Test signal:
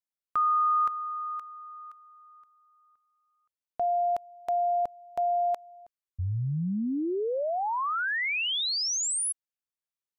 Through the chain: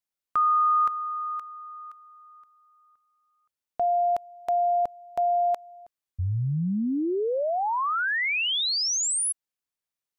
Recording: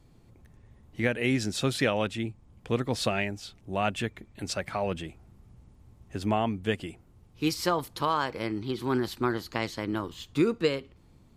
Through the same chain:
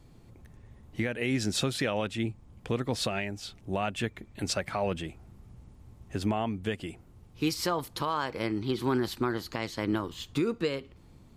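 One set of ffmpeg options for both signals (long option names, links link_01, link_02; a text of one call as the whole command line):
ffmpeg -i in.wav -af "alimiter=limit=-21dB:level=0:latency=1:release=304,volume=3dB" out.wav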